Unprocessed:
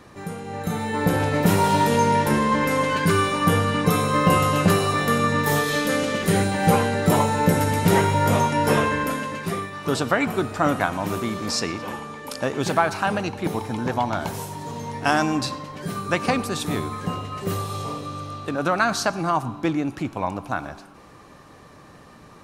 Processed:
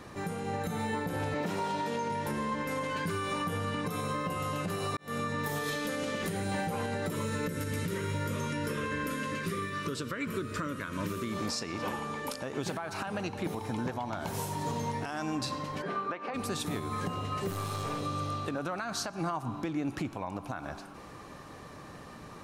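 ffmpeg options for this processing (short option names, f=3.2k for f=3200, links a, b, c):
-filter_complex "[0:a]asettb=1/sr,asplit=3[a][b][c];[a]atrim=end=1.344[d];[b]atrim=start=1.34:end=2.1,asetpts=PTS-STARTPTS,afade=t=in:d=0.004:c=qsin,afade=t=out:st=0.756:d=0.004:c=qsin,acrossover=split=170 7500:gain=0.251 1 0.224[e][f][g];[e][f][g]amix=inputs=3:normalize=0[h];[c]atrim=start=2.096[i];[d][h]acrossfade=d=0.004:c1=hsin:c2=qsin[j];[j][i]acrossfade=d=0.004:c1=qsin:c2=hsin,asettb=1/sr,asplit=3[k][l][m];[k]atrim=end=7.104[n];[l]atrim=start=7.1:end=11.32,asetpts=PTS-STARTPTS,afade=t=in:d=0.004:c=qsin,afade=t=out:st=4.216:d=0.004:c=qsin,asuperstop=centerf=770:order=4:qfactor=1.5[o];[m]atrim=start=11.316[p];[n][o]acrossfade=d=0.004:c1=hsin:c2=qsin[q];[q][p]acrossfade=d=0.004:c1=qsin:c2=hsin,asplit=3[r][s][t];[r]afade=t=out:st=15.81:d=0.02[u];[s]highpass=360,lowpass=2.2k,afade=t=in:st=15.81:d=0.02,afade=t=out:st=16.33:d=0.02[v];[t]afade=t=in:st=16.33:d=0.02[w];[u][v][w]amix=inputs=3:normalize=0,asettb=1/sr,asplit=3[x][y][z];[x]atrim=end=17.504[aa];[y]atrim=start=17.5:end=18.01,asetpts=PTS-STARTPTS,afade=t=in:d=0.004:c=qsin,afade=t=out:st=0.506:d=0.004:c=qsin,aeval=exprs='clip(val(0),-1,0.0237)':c=same[ab];[z]atrim=start=18.006[ac];[aa][ab]acrossfade=d=0.004:c1=hsin:c2=qsin[ad];[ad][ac]acrossfade=d=0.004:c1=qsin:c2=hsin,asplit=2[ae][af];[ae]atrim=end=4.97,asetpts=PTS-STARTPTS,afade=t=out:st=4.966:d=0.004:c=hsin[ag];[af]atrim=start=4.97,asetpts=PTS-STARTPTS,afade=t=in:d=0.77[ah];[ag][ah]concat=n=2:v=0:a=1,acompressor=threshold=-25dB:ratio=6,alimiter=limit=-24dB:level=0:latency=1:release=257"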